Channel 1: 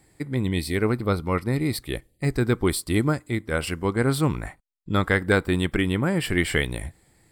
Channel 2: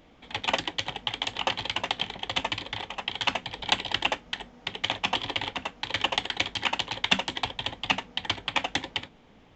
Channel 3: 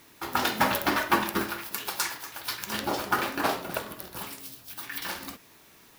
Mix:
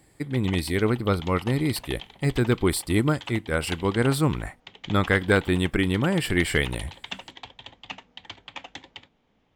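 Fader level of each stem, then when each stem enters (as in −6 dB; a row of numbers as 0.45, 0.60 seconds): 0.0 dB, −12.0 dB, muted; 0.00 s, 0.00 s, muted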